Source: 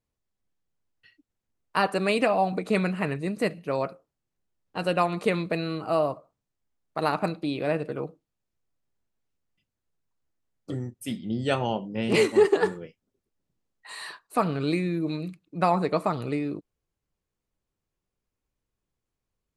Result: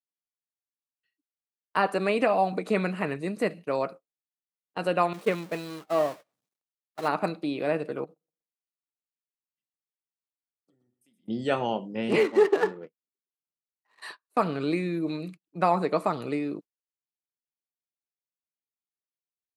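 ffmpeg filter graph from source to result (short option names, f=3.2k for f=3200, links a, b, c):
-filter_complex "[0:a]asettb=1/sr,asplit=3[a][b][c];[a]atrim=end=5.134[d];[b]atrim=start=5.13:end=7.08,asetpts=PTS-STARTPTS,afade=t=in:d=0.004:c=qsin,afade=t=out:st=1.946:d=0.004:c=qsin,aeval=exprs='val(0)+0.5*0.0531*sgn(val(0))':c=same,agate=range=-33dB:threshold=-18dB:ratio=3:release=100:detection=peak[e];[c]atrim=start=7.076[f];[d][e]acrossfade=d=0.004:c1=hsin:c2=qsin[g];[g][f]acrossfade=d=0.004:c1=qsin:c2=hsin,asettb=1/sr,asplit=3[h][i][j];[h]atrim=end=8.044[k];[i]atrim=start=8.04:end=11.28,asetpts=PTS-STARTPTS,afade=t=in:d=0.004:c=qsin,afade=t=out:st=3.236:d=0.004:c=qsin,acompressor=threshold=-41dB:ratio=12:attack=3.2:release=140:knee=1:detection=peak,aecho=1:1:121|242|363:0.251|0.0754|0.0226,atrim=end_sample=142884[l];[j]atrim=start=11.276[m];[k][l]acrossfade=d=0.004:c1=hsin:c2=qsin[n];[n][m]acrossfade=d=0.004:c1=qsin:c2=hsin,asettb=1/sr,asplit=3[o][p][q];[o]atrim=end=12.194[r];[p]atrim=start=12.19:end=14.02,asetpts=PTS-STARTPTS,afade=t=in:d=0.004:c=qsin,afade=t=out:st=1.826:d=0.004:c=qsin,lowshelf=f=150:g=-9,adynamicsmooth=sensitivity=7.5:basefreq=800[s];[q]atrim=start=14.016[t];[r][s]acrossfade=d=0.004:c1=hsin:c2=qsin[u];[u][t]acrossfade=d=0.004:c1=qsin:c2=hsin,acrossover=split=2600[v][w];[w]acompressor=threshold=-41dB:ratio=4:attack=1:release=60[x];[v][x]amix=inputs=2:normalize=0,agate=range=-23dB:threshold=-40dB:ratio=16:detection=peak,highpass=190"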